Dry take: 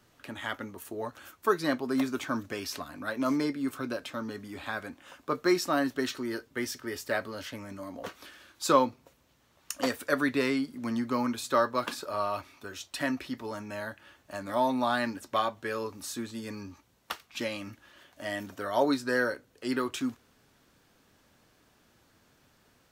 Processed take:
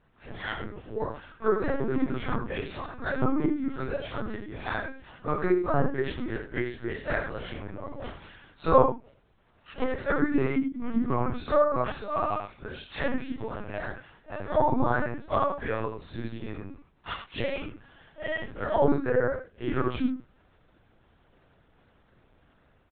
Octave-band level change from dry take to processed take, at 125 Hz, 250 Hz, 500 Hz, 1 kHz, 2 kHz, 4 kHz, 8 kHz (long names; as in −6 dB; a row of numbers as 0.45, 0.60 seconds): +10.0 dB, +1.5 dB, +3.5 dB, +2.0 dB, 0.0 dB, −5.5 dB, below −35 dB